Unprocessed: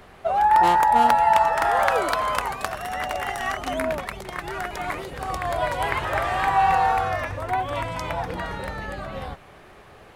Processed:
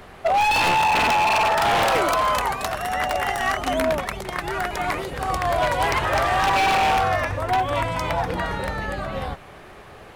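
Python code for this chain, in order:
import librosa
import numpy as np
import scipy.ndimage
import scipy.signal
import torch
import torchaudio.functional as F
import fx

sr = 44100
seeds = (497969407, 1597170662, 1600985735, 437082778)

y = fx.high_shelf(x, sr, hz=3200.0, db=-11.0, at=(0.68, 1.43))
y = 10.0 ** (-18.5 / 20.0) * (np.abs((y / 10.0 ** (-18.5 / 20.0) + 3.0) % 4.0 - 2.0) - 1.0)
y = y * librosa.db_to_amplitude(4.5)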